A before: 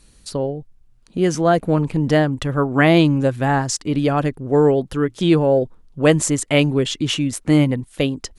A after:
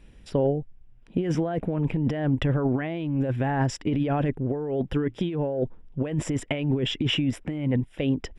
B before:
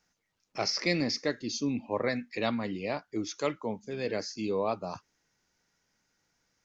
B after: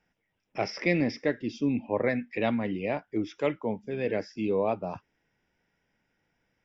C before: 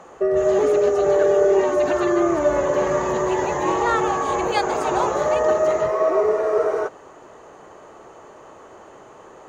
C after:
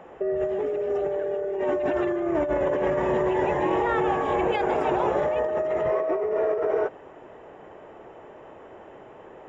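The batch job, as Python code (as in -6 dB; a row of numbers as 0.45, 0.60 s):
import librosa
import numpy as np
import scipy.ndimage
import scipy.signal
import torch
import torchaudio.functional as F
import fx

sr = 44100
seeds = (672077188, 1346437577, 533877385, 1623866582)

y = fx.peak_eq(x, sr, hz=1200.0, db=-8.0, octaves=0.53)
y = fx.over_compress(y, sr, threshold_db=-22.0, ratio=-1.0)
y = scipy.signal.savgol_filter(y, 25, 4, mode='constant')
y = librosa.util.normalize(y) * 10.0 ** (-12 / 20.0)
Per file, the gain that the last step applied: -3.0, +4.0, -2.5 dB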